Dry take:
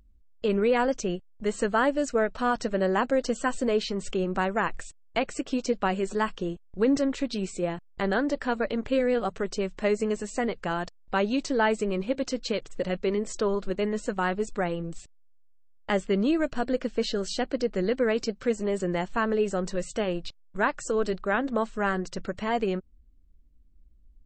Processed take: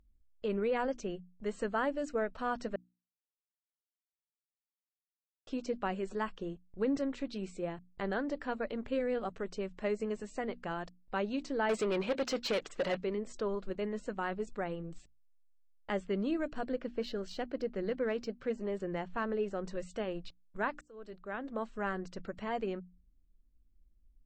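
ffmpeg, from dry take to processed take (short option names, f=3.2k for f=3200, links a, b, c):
-filter_complex "[0:a]asettb=1/sr,asplit=3[a][b][c];[a]atrim=end=11.694[d];[b]atrim=start=11.69:end=13.03,asetpts=PTS-STARTPTS,afade=t=in:d=0.004:c=qsin,afade=t=out:st=1.336:d=0.004:c=qsin,asplit=2[e][f];[f]highpass=f=720:p=1,volume=22dB,asoftclip=type=tanh:threshold=-14.5dB[g];[e][g]amix=inputs=2:normalize=0,lowpass=f=7.3k:p=1,volume=-6dB[h];[c]atrim=start=13.026[i];[d][h]acrossfade=d=0.004:c1=hsin:c2=qsin[j];[j][i]acrossfade=d=0.004:c1=qsin:c2=hsin,asettb=1/sr,asplit=3[k][l][m];[k]atrim=end=16.724[n];[l]atrim=start=16.72:end=19.68,asetpts=PTS-STARTPTS,afade=t=in:d=0.004:c=qsin,afade=t=out:st=2.956:d=0.004:c=qsin,adynamicsmooth=sensitivity=5.5:basefreq=5.5k[o];[m]atrim=start=19.676[p];[n][o]acrossfade=d=0.004:c1=hsin:c2=qsin[q];[q][p]acrossfade=d=0.004:c1=qsin:c2=hsin,asplit=4[r][s][t][u];[r]atrim=end=2.76,asetpts=PTS-STARTPTS,afade=t=out:st=2.756:d=0.004:c=hsin[v];[s]atrim=start=2.76:end=5.47,asetpts=PTS-STARTPTS,volume=0[w];[t]atrim=start=5.47:end=20.81,asetpts=PTS-STARTPTS,afade=t=in:d=0.004:c=hsin,afade=t=out:st=15.336:d=0.004:c=hsin[x];[u]atrim=start=20.81,asetpts=PTS-STARTPTS,afade=t=in:d=0.97[y];[v][w][x][y]concat=n=4:v=0:a=1,highshelf=f=5.7k:g=-11,bandreject=f=60:t=h:w=6,bandreject=f=120:t=h:w=6,bandreject=f=180:t=h:w=6,bandreject=f=240:t=h:w=6,bandreject=f=300:t=h:w=6,volume=-8.5dB"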